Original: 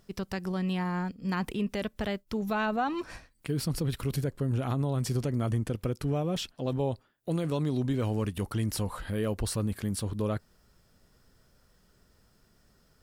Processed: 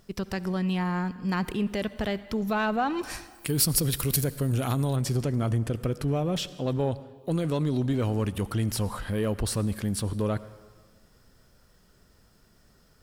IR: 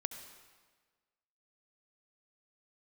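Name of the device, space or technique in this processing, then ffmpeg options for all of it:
saturated reverb return: -filter_complex "[0:a]asplit=2[link_01][link_02];[1:a]atrim=start_sample=2205[link_03];[link_02][link_03]afir=irnorm=-1:irlink=0,asoftclip=type=tanh:threshold=-28.5dB,volume=-4dB[link_04];[link_01][link_04]amix=inputs=2:normalize=0,asettb=1/sr,asplit=3[link_05][link_06][link_07];[link_05]atrim=end=3.034[link_08];[link_06]atrim=start=3.03:end=4.96,asetpts=PTS-STARTPTS,afade=type=in:duration=0.004:curve=qsin,afade=type=out:start_time=1.926:duration=0.004:curve=qsin,aemphasis=mode=production:type=75kf[link_09];[link_07]atrim=start=4.956[link_10];[link_08][link_09]acrossfade=duration=0.004:curve1=hsin:curve2=qsin[link_11];[link_11][link_10]acrossfade=duration=0.004:curve1=qsin:curve2=hsin"

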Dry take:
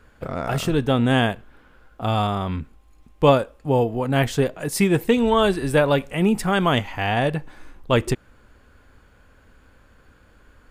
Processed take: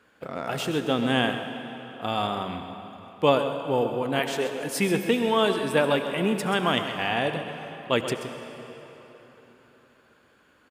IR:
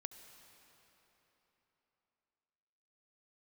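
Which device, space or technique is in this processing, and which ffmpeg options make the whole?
PA in a hall: -filter_complex "[0:a]asettb=1/sr,asplit=3[link_01][link_02][link_03];[link_01]atrim=end=4.194[link_04];[link_02]atrim=start=4.19:end=4.61,asetpts=PTS-STARTPTS,afade=type=in:duration=0.004:curve=qsin,afade=type=out:start_time=0.416:duration=0.004:curve=qsin,highpass=340[link_05];[link_03]atrim=start=4.606[link_06];[link_04][link_05]acrossfade=duration=0.004:curve1=hsin:curve2=qsin[link_07];[link_07][link_06]acrossfade=duration=0.004:curve1=qsin:curve2=hsin,highpass=190,equalizer=frequency=3000:width_type=o:width=0.94:gain=4,aecho=1:1:131:0.282[link_08];[1:a]atrim=start_sample=2205[link_09];[link_08][link_09]afir=irnorm=-1:irlink=0"

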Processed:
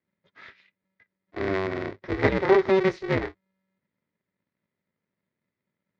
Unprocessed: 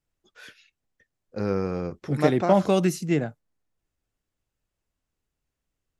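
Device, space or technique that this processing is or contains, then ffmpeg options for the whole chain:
ring modulator pedal into a guitar cabinet: -af "aeval=exprs='val(0)*sgn(sin(2*PI*190*n/s))':channel_layout=same,highpass=81,equalizer=frequency=100:width_type=q:width=4:gain=5,equalizer=frequency=390:width_type=q:width=4:gain=7,equalizer=frequency=760:width_type=q:width=4:gain=-4,equalizer=frequency=2000:width_type=q:width=4:gain=10,equalizer=frequency=2900:width_type=q:width=4:gain=-6,lowpass=frequency=4100:width=0.5412,lowpass=frequency=4100:width=1.3066,volume=-3dB"

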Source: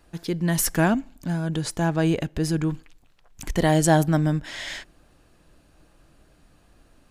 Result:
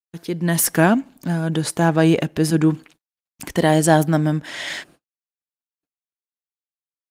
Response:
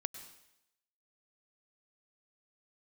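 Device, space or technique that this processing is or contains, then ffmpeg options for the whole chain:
video call: -filter_complex "[0:a]asettb=1/sr,asplit=3[link_01][link_02][link_03];[link_01]atrim=end=2.504[link_04];[link_02]atrim=start=2.5:end=3.43,asetpts=PTS-STARTPTS,afade=type=in:duration=0.004:curve=qsin,afade=type=out:start_time=0.926:duration=0.004:curve=qsin,adynamicequalizer=threshold=0.02:dfrequency=290:dqfactor=1.3:tfrequency=290:tqfactor=1.3:attack=5:release=100:ratio=0.375:range=1.5:mode=boostabove:tftype=bell[link_05];[link_03]atrim=start=3.426[link_06];[link_04][link_05]acrossfade=duration=0.004:curve1=hsin:curve2=qsin[link_07];[link_07][link_06]acrossfade=duration=0.004:curve1=qsin:curve2=hsin,highpass=150,dynaudnorm=framelen=280:gausssize=3:maxgain=7dB,agate=range=-53dB:threshold=-46dB:ratio=16:detection=peak,volume=1dB" -ar 48000 -c:a libopus -b:a 32k

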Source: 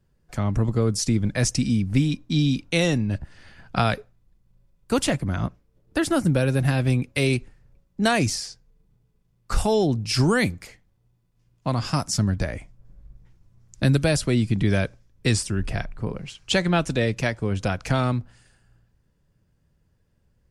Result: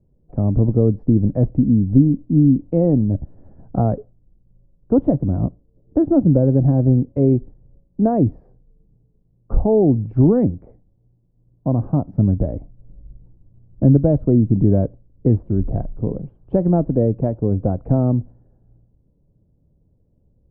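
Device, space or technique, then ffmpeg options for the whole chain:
under water: -af "lowpass=frequency=660:width=0.5412,lowpass=frequency=660:width=1.3066,equalizer=frequency=280:width_type=o:width=0.29:gain=4.5,volume=6dB"

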